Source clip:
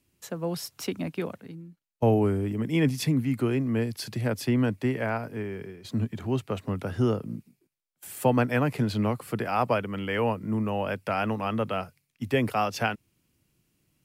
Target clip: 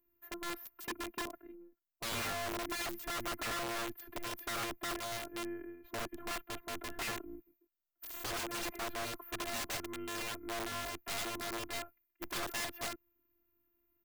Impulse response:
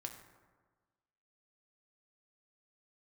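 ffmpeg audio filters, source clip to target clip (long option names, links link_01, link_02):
-af "firequalizer=gain_entry='entry(1500,0);entry(4700,-29);entry(9300,-27);entry(14000,12)':delay=0.05:min_phase=1,afftfilt=real='hypot(re,im)*cos(PI*b)':imag='0':win_size=512:overlap=0.75,aeval=exprs='(mod(29.9*val(0)+1,2)-1)/29.9':channel_layout=same,volume=-3.5dB"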